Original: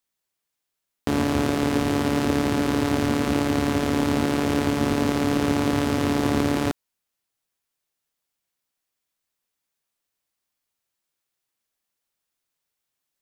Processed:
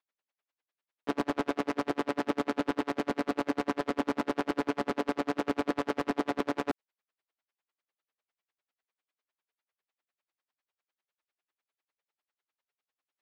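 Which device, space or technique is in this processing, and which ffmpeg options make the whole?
helicopter radio: -af "highpass=390,lowpass=2.8k,aeval=exprs='val(0)*pow(10,-39*(0.5-0.5*cos(2*PI*10*n/s))/20)':c=same,asoftclip=type=hard:threshold=-24dB,volume=4dB"

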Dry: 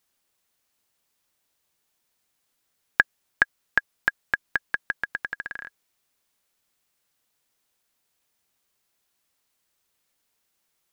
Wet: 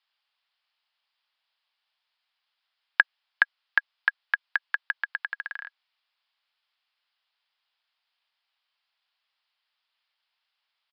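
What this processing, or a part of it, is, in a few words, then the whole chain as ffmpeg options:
musical greeting card: -af "aresample=11025,aresample=44100,highpass=f=770:w=0.5412,highpass=f=770:w=1.3066,equalizer=f=3.1k:t=o:w=0.55:g=4.5,volume=-1dB"

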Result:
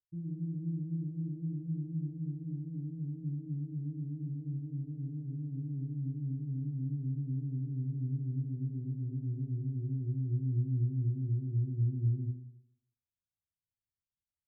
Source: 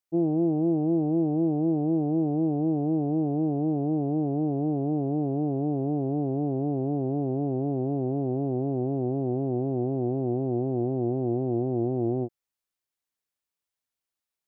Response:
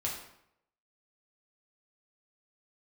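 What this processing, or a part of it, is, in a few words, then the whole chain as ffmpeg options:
club heard from the street: -filter_complex "[0:a]alimiter=limit=-22dB:level=0:latency=1,lowpass=f=170:w=0.5412,lowpass=f=170:w=1.3066[a];[1:a]atrim=start_sample=2205[b];[a][b]afir=irnorm=-1:irlink=0"

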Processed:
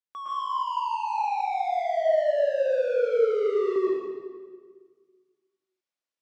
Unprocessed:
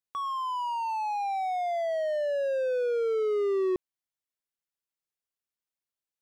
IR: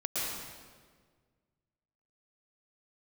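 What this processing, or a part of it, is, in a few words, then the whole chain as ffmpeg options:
supermarket ceiling speaker: -filter_complex "[0:a]highpass=230,lowpass=6.5k[a];[1:a]atrim=start_sample=2205[b];[a][b]afir=irnorm=-1:irlink=0,volume=-3dB"

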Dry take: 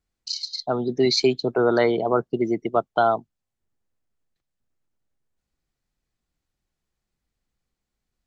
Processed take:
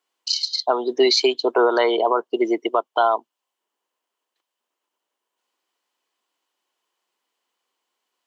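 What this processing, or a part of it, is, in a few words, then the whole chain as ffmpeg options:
laptop speaker: -af "highpass=f=350:w=0.5412,highpass=f=350:w=1.3066,equalizer=f=1k:t=o:w=0.34:g=11.5,equalizer=f=3k:t=o:w=0.26:g=10,alimiter=limit=-13.5dB:level=0:latency=1:release=230,volume=6dB"

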